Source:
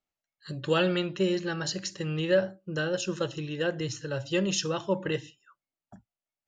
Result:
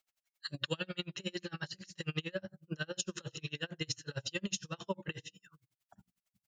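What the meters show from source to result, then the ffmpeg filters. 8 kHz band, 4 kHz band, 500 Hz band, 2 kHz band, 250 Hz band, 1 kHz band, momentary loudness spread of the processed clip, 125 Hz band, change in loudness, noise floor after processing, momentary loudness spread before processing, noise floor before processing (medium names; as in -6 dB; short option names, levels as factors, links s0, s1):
-5.5 dB, -5.5 dB, -15.5 dB, -8.0 dB, -12.0 dB, -11.5 dB, 7 LU, -9.0 dB, -10.5 dB, under -85 dBFS, 9 LU, under -85 dBFS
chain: -filter_complex "[0:a]tiltshelf=f=970:g=-7.5,bandreject=f=60:t=h:w=6,bandreject=f=120:t=h:w=6,bandreject=f=180:t=h:w=6,bandreject=f=240:t=h:w=6,bandreject=f=300:t=h:w=6,bandreject=f=360:t=h:w=6,bandreject=f=420:t=h:w=6,bandreject=f=480:t=h:w=6,acrossover=split=190[s0][s1];[s0]aecho=1:1:408:0.106[s2];[s1]acompressor=threshold=0.01:ratio=6[s3];[s2][s3]amix=inputs=2:normalize=0,aeval=exprs='val(0)*pow(10,-35*(0.5-0.5*cos(2*PI*11*n/s))/20)':c=same,volume=2.51"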